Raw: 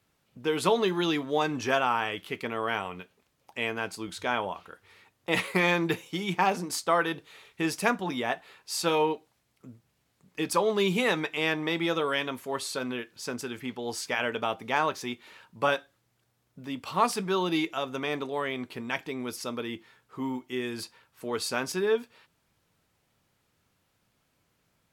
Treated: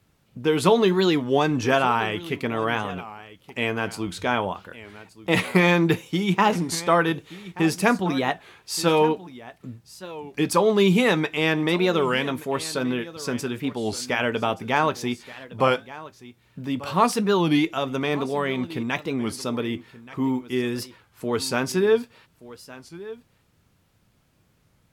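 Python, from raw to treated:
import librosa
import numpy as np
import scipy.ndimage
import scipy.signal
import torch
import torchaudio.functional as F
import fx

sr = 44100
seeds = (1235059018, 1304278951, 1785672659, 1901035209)

y = fx.low_shelf(x, sr, hz=260.0, db=9.5)
y = y + 10.0 ** (-17.5 / 20.0) * np.pad(y, (int(1177 * sr / 1000.0), 0))[:len(y)]
y = fx.record_warp(y, sr, rpm=33.33, depth_cents=160.0)
y = y * librosa.db_to_amplitude(4.0)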